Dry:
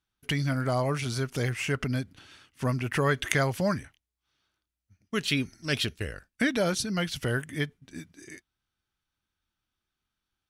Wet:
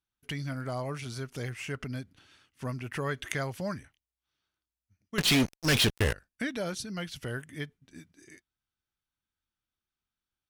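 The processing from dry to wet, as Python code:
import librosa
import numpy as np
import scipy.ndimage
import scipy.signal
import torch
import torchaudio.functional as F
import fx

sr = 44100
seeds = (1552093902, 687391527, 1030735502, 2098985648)

y = fx.fuzz(x, sr, gain_db=34.0, gate_db=-43.0, at=(5.18, 6.13))
y = y * librosa.db_to_amplitude(-7.5)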